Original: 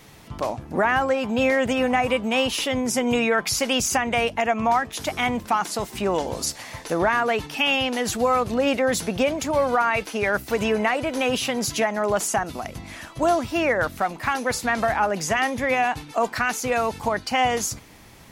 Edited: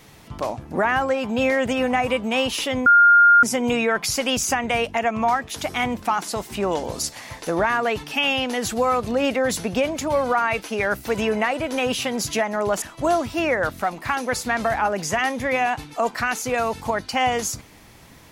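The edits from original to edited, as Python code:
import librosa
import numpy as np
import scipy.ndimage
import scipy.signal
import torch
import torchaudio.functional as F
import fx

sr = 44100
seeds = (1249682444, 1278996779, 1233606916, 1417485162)

y = fx.edit(x, sr, fx.insert_tone(at_s=2.86, length_s=0.57, hz=1410.0, db=-9.0),
    fx.cut(start_s=12.25, length_s=0.75), tone=tone)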